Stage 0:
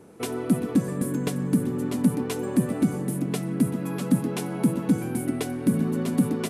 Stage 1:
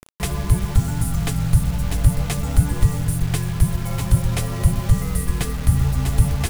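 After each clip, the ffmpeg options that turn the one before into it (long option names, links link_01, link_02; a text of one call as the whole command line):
ffmpeg -i in.wav -af "afreqshift=-300,acrusher=bits=6:mix=0:aa=0.000001,volume=6.5dB" out.wav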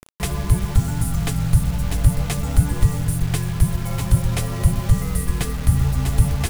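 ffmpeg -i in.wav -af anull out.wav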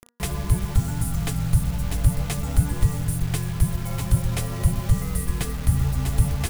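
ffmpeg -i in.wav -af "highshelf=frequency=12000:gain=3.5,bandreject=frequency=238.5:width_type=h:width=4,bandreject=frequency=477:width_type=h:width=4,bandreject=frequency=715.5:width_type=h:width=4,bandreject=frequency=954:width_type=h:width=4,bandreject=frequency=1192.5:width_type=h:width=4,bandreject=frequency=1431:width_type=h:width=4,bandreject=frequency=1669.5:width_type=h:width=4,bandreject=frequency=1908:width_type=h:width=4,volume=-3.5dB" out.wav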